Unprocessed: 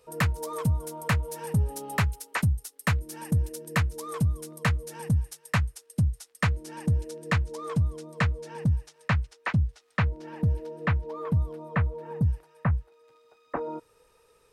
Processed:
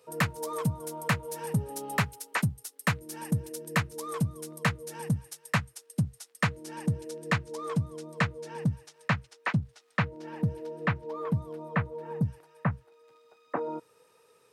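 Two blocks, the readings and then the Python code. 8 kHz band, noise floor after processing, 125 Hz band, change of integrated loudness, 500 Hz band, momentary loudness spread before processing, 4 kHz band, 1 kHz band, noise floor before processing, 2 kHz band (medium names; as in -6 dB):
0.0 dB, -64 dBFS, -5.0 dB, -3.0 dB, 0.0 dB, 3 LU, 0.0 dB, 0.0 dB, -64 dBFS, 0.0 dB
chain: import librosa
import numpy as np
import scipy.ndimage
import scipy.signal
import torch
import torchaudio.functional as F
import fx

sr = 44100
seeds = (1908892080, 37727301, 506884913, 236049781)

y = scipy.signal.sosfilt(scipy.signal.butter(4, 120.0, 'highpass', fs=sr, output='sos'), x)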